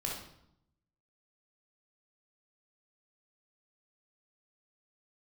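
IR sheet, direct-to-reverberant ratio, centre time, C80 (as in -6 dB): -2.0 dB, 44 ms, 6.5 dB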